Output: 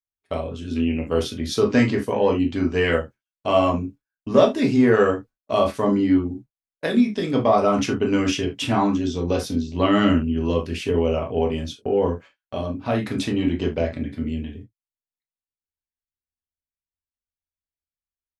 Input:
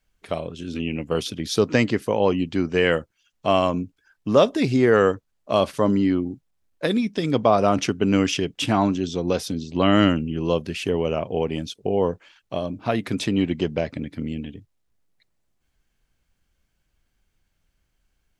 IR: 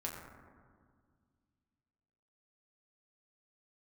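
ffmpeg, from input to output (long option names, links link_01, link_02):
-filter_complex "[0:a]asplit=2[link_01][link_02];[link_02]acontrast=27,volume=0dB[link_03];[link_01][link_03]amix=inputs=2:normalize=0,agate=range=-32dB:threshold=-32dB:ratio=16:detection=peak[link_04];[1:a]atrim=start_sample=2205,atrim=end_sample=3528[link_05];[link_04][link_05]afir=irnorm=-1:irlink=0,volume=-7.5dB"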